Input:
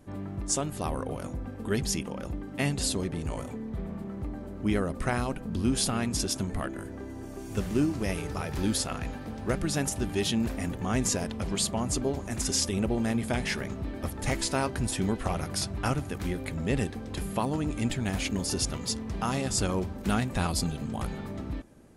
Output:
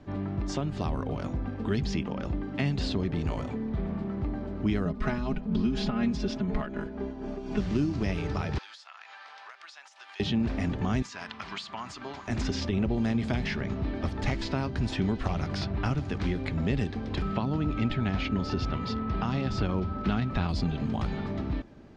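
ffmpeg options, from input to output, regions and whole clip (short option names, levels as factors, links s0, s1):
-filter_complex "[0:a]asettb=1/sr,asplit=3[s0][s1][s2];[s0]atrim=end=4.854[s3];[s1]atrim=start=4.85:end=7.6,asetpts=PTS-STARTPTS,afade=t=in:d=0.004:c=qsin,afade=t=out:st=2.746:d=0.004:c=qsin,lowpass=f=3400:p=1,aecho=1:1:4.8:0.99,atrim=end_sample=121275,tremolo=f=4.1:d=0.54[s4];[s2]atrim=start=7.596[s5];[s3][s4]acrossfade=d=0.004:c1=hsin:c2=qsin[s6];[s6][s5]acrossfade=d=0.004:c1=qsin:c2=hsin,asettb=1/sr,asplit=3[s7][s8][s9];[s7]atrim=end=8.584[s10];[s8]atrim=start=8.58:end=10.2,asetpts=PTS-STARTPTS,afade=t=in:d=0.004:c=qsin,afade=t=out:st=1.616:d=0.004:c=qsin,highpass=f=950:w=0.5412,highpass=f=950:w=1.3066,acompressor=threshold=0.00447:ratio=10:attack=3.2:release=140:knee=1:detection=peak[s11];[s9]atrim=start=10.196[s12];[s10][s11]acrossfade=d=0.004:c1=hsin:c2=qsin[s13];[s13][s12]acrossfade=d=0.004:c1=qsin:c2=hsin,asettb=1/sr,asplit=3[s14][s15][s16];[s14]atrim=end=11.024[s17];[s15]atrim=start=11.02:end=12.28,asetpts=PTS-STARTPTS,afade=t=in:d=0.004:c=qsin,afade=t=out:st=1.256:d=0.004:c=qsin,highpass=f=230:p=1,lowshelf=f=770:t=q:w=1.5:g=-12,acompressor=threshold=0.0158:ratio=3:attack=3.2:release=140:knee=1:detection=peak[s18];[s16]atrim=start=12.276[s19];[s17][s18]acrossfade=d=0.004:c1=hsin:c2=qsin[s20];[s20][s19]acrossfade=d=0.004:c1=qsin:c2=hsin,asettb=1/sr,asplit=3[s21][s22][s23];[s21]atrim=end=17.224[s24];[s22]atrim=start=17.22:end=20.49,asetpts=PTS-STARTPTS,afade=t=in:d=0.004:c=qsin,afade=t=out:st=3.266:d=0.004:c=qsin,lowpass=4100,aeval=exprs='val(0)+0.00891*sin(2*PI*1300*n/s)':c=same[s25];[s23]atrim=start=20.486[s26];[s24][s25]acrossfade=d=0.004:c1=hsin:c2=qsin[s27];[s27][s26]acrossfade=d=0.004:c1=qsin:c2=hsin,lowpass=f=5000:w=0.5412,lowpass=f=5000:w=1.3066,bandreject=f=510:w=12,acrossover=split=250|3900[s28][s29][s30];[s28]acompressor=threshold=0.0316:ratio=4[s31];[s29]acompressor=threshold=0.0141:ratio=4[s32];[s30]acompressor=threshold=0.00251:ratio=4[s33];[s31][s32][s33]amix=inputs=3:normalize=0,volume=1.68"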